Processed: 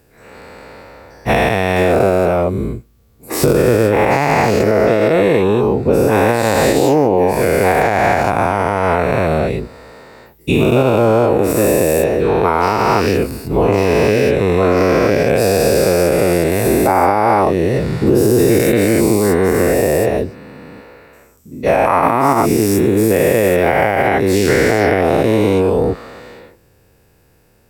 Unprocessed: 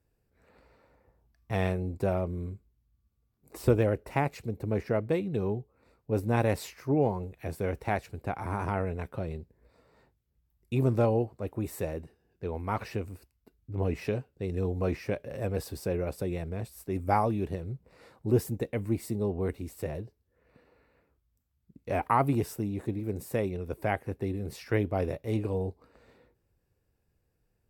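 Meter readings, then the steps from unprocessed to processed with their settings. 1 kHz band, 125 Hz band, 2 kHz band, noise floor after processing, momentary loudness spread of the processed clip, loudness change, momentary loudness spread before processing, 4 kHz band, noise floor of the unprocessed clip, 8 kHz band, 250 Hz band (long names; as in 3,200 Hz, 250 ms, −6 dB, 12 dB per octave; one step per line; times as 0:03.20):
+19.0 dB, +12.5 dB, +22.0 dB, −52 dBFS, 5 LU, +18.0 dB, 11 LU, +23.0 dB, −76 dBFS, +24.0 dB, +17.5 dB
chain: every bin's largest magnitude spread in time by 480 ms
low-shelf EQ 110 Hz −11 dB
downward compressor 4 to 1, threshold −30 dBFS, peak gain reduction 14 dB
boost into a limiter +21 dB
level −1 dB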